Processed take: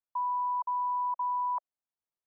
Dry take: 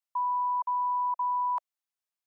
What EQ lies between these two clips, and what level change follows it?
LPF 1100 Hz 12 dB/oct; 0.0 dB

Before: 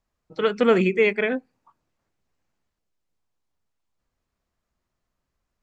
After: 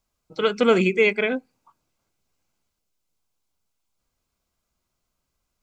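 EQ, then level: Butterworth band-stop 1800 Hz, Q 7.3; high shelf 3600 Hz +9.5 dB; 0.0 dB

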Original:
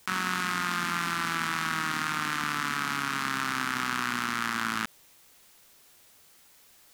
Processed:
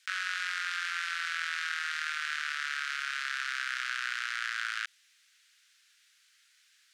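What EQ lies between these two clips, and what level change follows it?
elliptic high-pass 1500 Hz, stop band 70 dB; air absorption 73 m; 0.0 dB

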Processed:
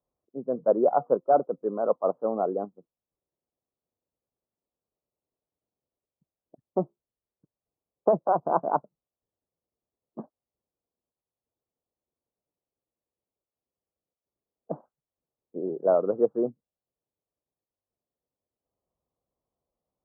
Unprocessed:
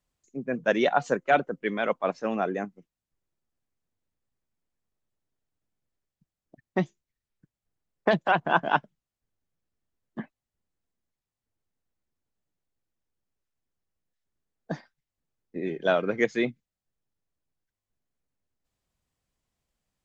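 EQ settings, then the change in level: HPF 40 Hz; steep low-pass 1300 Hz 72 dB/oct; bell 520 Hz +12 dB 1.7 oct; -8.0 dB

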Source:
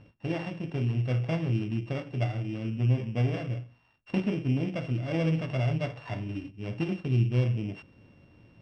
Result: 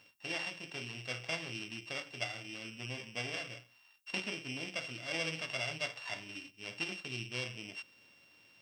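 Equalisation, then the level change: differentiator; +12.5 dB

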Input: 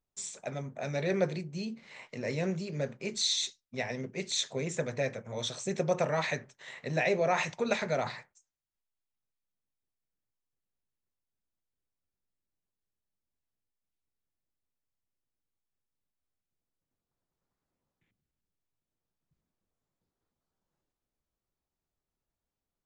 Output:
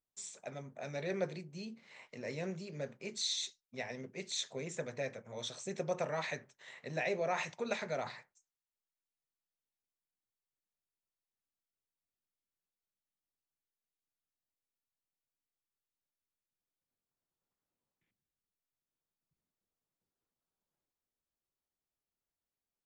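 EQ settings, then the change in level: low shelf 130 Hz -7.5 dB; -6.5 dB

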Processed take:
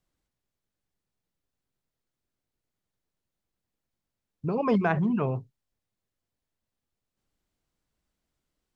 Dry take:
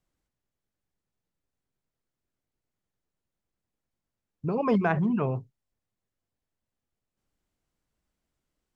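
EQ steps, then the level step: bell 4000 Hz +2.5 dB; 0.0 dB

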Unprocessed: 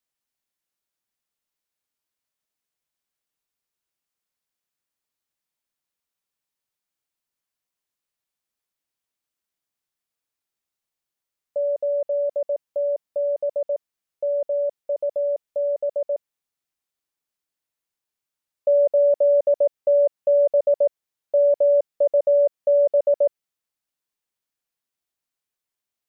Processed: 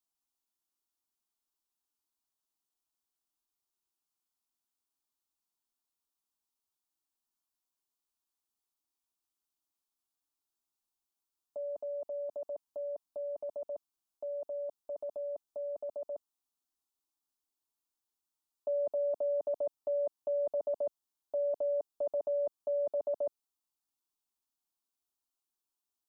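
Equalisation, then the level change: fixed phaser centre 530 Hz, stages 6; -2.5 dB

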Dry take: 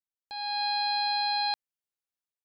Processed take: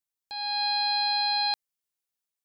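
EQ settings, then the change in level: high shelf 4000 Hz +7 dB; 0.0 dB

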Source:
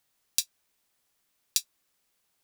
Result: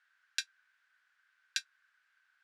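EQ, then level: ladder band-pass 1600 Hz, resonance 85%; +14.5 dB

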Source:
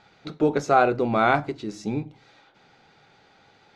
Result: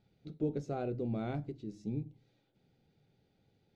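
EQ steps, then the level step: EQ curve 130 Hz 0 dB, 510 Hz -10 dB, 1100 Hz -26 dB, 3000 Hz -16 dB; -5.5 dB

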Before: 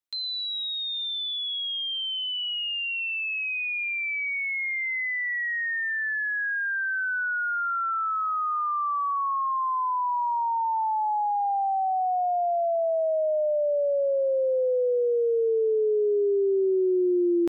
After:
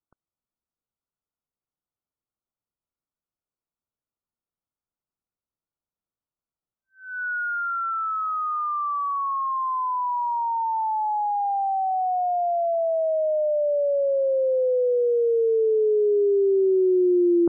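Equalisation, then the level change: brick-wall FIR low-pass 1500 Hz; low shelf 320 Hz +8.5 dB; 0.0 dB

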